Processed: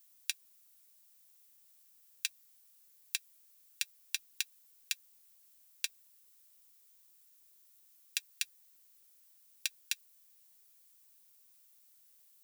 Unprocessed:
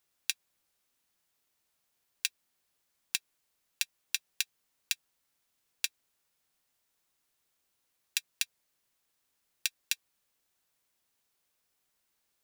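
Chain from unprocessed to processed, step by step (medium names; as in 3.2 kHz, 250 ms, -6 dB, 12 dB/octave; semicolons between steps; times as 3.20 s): added noise violet -61 dBFS; trim -3.5 dB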